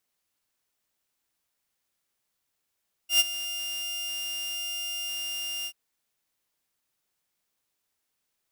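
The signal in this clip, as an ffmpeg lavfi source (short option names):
-f lavfi -i "aevalsrc='0.211*(2*mod(2800*t,1)-1)':d=2.634:s=44100,afade=t=in:d=0.109,afade=t=out:st=0.109:d=0.028:silence=0.178,afade=t=out:st=2.57:d=0.064"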